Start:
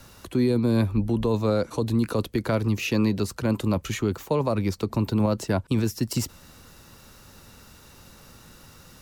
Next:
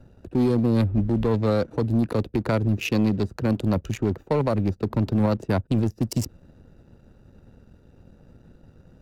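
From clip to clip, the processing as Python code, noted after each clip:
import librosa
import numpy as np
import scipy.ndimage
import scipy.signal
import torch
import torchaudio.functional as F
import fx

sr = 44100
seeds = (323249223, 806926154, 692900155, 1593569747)

y = fx.wiener(x, sr, points=41)
y = fx.leveller(y, sr, passes=1)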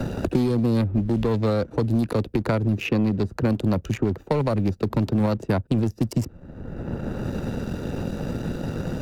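y = fx.band_squash(x, sr, depth_pct=100)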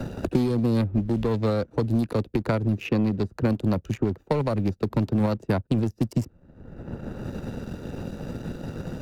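y = fx.upward_expand(x, sr, threshold_db=-40.0, expansion=1.5)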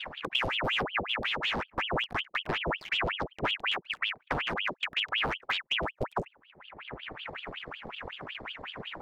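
y = fx.wiener(x, sr, points=15)
y = fx.ring_lfo(y, sr, carrier_hz=1700.0, swing_pct=85, hz=5.4)
y = y * librosa.db_to_amplitude(-5.0)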